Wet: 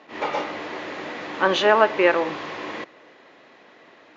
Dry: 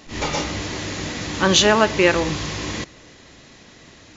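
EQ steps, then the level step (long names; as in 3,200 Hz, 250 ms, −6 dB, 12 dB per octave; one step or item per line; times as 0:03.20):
band-pass filter 470–3,100 Hz
high-shelf EQ 2,400 Hz −11.5 dB
+3.0 dB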